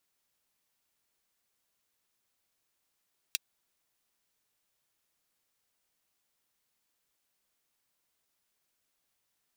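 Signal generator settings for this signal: closed hi-hat, high-pass 2900 Hz, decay 0.03 s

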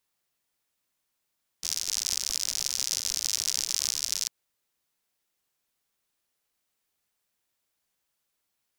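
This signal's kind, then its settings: rain from filtered ticks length 2.65 s, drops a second 90, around 5600 Hz, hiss -28 dB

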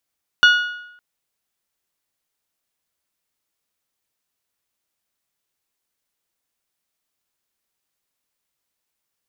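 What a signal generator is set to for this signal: metal hit bell, length 0.56 s, lowest mode 1450 Hz, decay 0.81 s, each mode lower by 6 dB, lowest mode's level -7 dB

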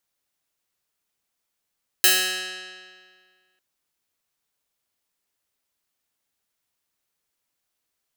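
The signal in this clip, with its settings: plucked string F#3, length 1.55 s, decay 1.89 s, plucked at 0.16, bright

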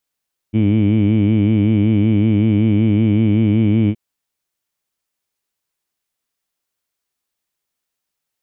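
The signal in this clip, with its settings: formant-synthesis vowel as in heed, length 3.42 s, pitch 105 Hz, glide +0.5 st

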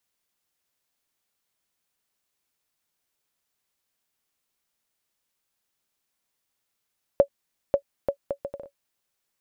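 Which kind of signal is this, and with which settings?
bouncing ball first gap 0.54 s, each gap 0.64, 561 Hz, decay 83 ms -6 dBFS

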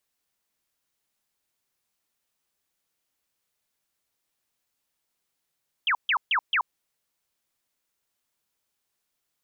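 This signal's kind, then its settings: burst of laser zaps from 3400 Hz, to 870 Hz, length 0.08 s sine, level -20 dB, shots 4, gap 0.14 s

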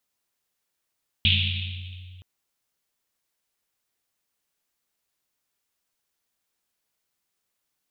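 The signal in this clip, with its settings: Risset drum length 0.97 s, pitch 91 Hz, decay 2.81 s, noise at 3100 Hz, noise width 1300 Hz, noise 50%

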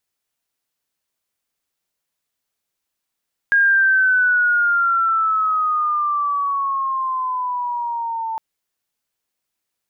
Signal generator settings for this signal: gliding synth tone sine, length 4.86 s, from 1630 Hz, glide -10.5 st, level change -11 dB, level -11 dB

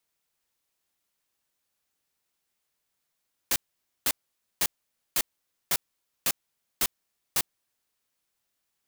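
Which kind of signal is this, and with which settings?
noise bursts white, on 0.05 s, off 0.50 s, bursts 8, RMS -24 dBFS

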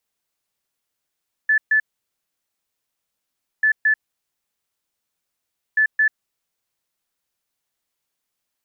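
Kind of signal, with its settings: beep pattern sine 1740 Hz, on 0.09 s, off 0.13 s, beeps 2, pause 1.83 s, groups 3, -13 dBFS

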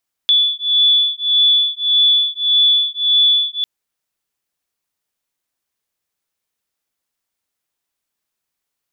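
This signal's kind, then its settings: beating tones 3450 Hz, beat 1.7 Hz, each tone -14.5 dBFS 3.35 s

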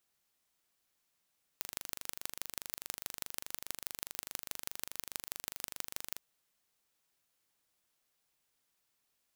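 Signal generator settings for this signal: pulse train 24.8/s, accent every 4, -8.5 dBFS 4.58 s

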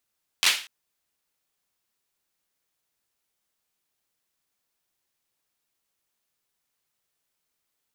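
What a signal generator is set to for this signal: hand clap length 0.24 s, bursts 4, apart 11 ms, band 2800 Hz, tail 0.37 s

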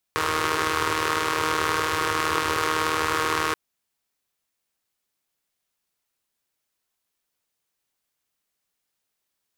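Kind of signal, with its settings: four-cylinder engine model, steady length 3.38 s, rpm 4700, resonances 100/410/1100 Hz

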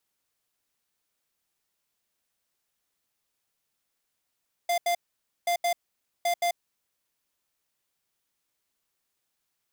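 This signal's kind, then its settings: beep pattern square 695 Hz, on 0.09 s, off 0.08 s, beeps 2, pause 0.52 s, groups 3, -25 dBFS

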